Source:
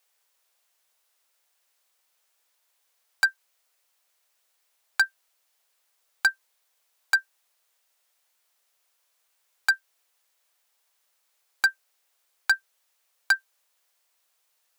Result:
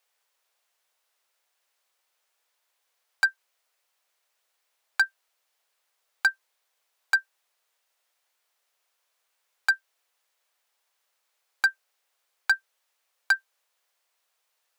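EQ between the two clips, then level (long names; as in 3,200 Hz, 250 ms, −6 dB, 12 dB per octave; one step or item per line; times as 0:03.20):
parametric band 200 Hz −7 dB 0.79 octaves
high-shelf EQ 5,100 Hz −6.5 dB
0.0 dB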